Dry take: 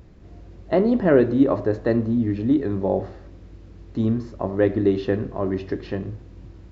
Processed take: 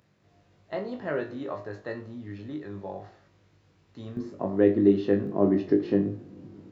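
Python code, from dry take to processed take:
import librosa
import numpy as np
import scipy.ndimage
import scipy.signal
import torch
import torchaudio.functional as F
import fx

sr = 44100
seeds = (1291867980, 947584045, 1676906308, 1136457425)

y = scipy.signal.sosfilt(scipy.signal.butter(4, 120.0, 'highpass', fs=sr, output='sos'), x)
y = fx.peak_eq(y, sr, hz=270.0, db=fx.steps((0.0, -12.0), (4.17, 5.0), (5.27, 12.0)), octaves=2.2)
y = fx.room_flutter(y, sr, wall_m=3.4, rt60_s=0.22)
y = F.gain(torch.from_numpy(y), -7.5).numpy()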